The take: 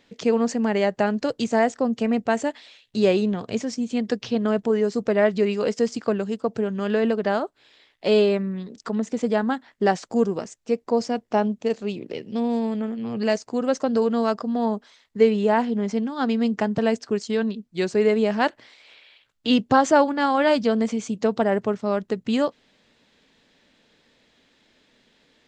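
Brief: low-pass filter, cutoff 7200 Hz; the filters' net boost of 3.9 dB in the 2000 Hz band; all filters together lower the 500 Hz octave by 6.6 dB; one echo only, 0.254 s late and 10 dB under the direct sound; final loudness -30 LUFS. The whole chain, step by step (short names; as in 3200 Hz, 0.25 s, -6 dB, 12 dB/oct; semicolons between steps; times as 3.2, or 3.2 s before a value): LPF 7200 Hz; bell 500 Hz -8.5 dB; bell 2000 Hz +5.5 dB; echo 0.254 s -10 dB; gain -4.5 dB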